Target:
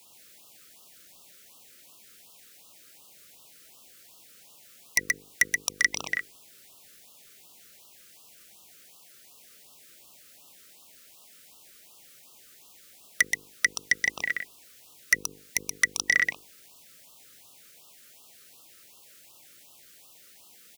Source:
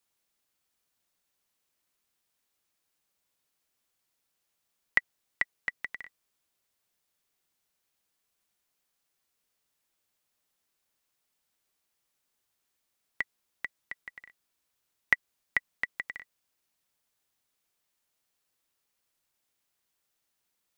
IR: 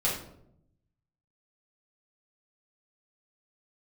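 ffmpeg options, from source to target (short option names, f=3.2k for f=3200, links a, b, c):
-filter_complex "[0:a]highpass=62,equalizer=f=91:t=o:w=0.68:g=-4.5,bandreject=f=50:t=h:w=6,bandreject=f=100:t=h:w=6,bandreject=f=150:t=h:w=6,bandreject=f=200:t=h:w=6,bandreject=f=250:t=h:w=6,bandreject=f=300:t=h:w=6,bandreject=f=350:t=h:w=6,bandreject=f=400:t=h:w=6,bandreject=f=450:t=h:w=6,bandreject=f=500:t=h:w=6,acrossover=split=2100[a][b];[a]alimiter=limit=-22dB:level=0:latency=1[c];[c][b]amix=inputs=2:normalize=0,acompressor=threshold=-38dB:ratio=3,aeval=exprs='0.119*sin(PI/2*4.47*val(0)/0.119)':c=same,aecho=1:1:127:0.596,afftfilt=real='re*(1-between(b*sr/1024,810*pow(1900/810,0.5+0.5*sin(2*PI*2.7*pts/sr))/1.41,810*pow(1900/810,0.5+0.5*sin(2*PI*2.7*pts/sr))*1.41))':imag='im*(1-between(b*sr/1024,810*pow(1900/810,0.5+0.5*sin(2*PI*2.7*pts/sr))/1.41,810*pow(1900/810,0.5+0.5*sin(2*PI*2.7*pts/sr))*1.41))':win_size=1024:overlap=0.75,volume=8dB"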